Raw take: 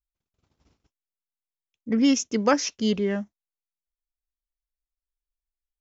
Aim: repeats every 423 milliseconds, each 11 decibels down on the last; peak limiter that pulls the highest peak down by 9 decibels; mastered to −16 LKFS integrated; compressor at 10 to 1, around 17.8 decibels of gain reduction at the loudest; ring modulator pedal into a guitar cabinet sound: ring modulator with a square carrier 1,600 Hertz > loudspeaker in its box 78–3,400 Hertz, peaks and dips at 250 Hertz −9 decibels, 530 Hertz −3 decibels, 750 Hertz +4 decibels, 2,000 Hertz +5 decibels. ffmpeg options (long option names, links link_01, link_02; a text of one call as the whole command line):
ffmpeg -i in.wav -af "acompressor=threshold=-34dB:ratio=10,alimiter=level_in=8.5dB:limit=-24dB:level=0:latency=1,volume=-8.5dB,aecho=1:1:423|846|1269:0.282|0.0789|0.0221,aeval=exprs='val(0)*sgn(sin(2*PI*1600*n/s))':channel_layout=same,highpass=78,equalizer=frequency=250:width_type=q:width=4:gain=-9,equalizer=frequency=530:width_type=q:width=4:gain=-3,equalizer=frequency=750:width_type=q:width=4:gain=4,equalizer=frequency=2000:width_type=q:width=4:gain=5,lowpass=frequency=3400:width=0.5412,lowpass=frequency=3400:width=1.3066,volume=23dB" out.wav